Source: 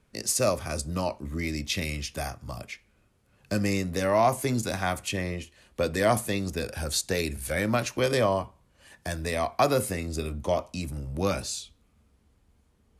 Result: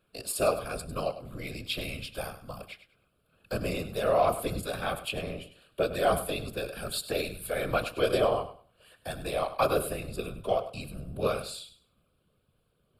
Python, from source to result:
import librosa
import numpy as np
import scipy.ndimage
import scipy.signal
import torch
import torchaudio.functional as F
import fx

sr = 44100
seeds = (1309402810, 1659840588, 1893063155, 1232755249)

y = scipy.signal.sosfilt(scipy.signal.butter(2, 97.0, 'highpass', fs=sr, output='sos'), x)
y = fx.fixed_phaser(y, sr, hz=1300.0, stages=8)
y = fx.whisperise(y, sr, seeds[0])
y = fx.echo_feedback(y, sr, ms=100, feedback_pct=23, wet_db=-13)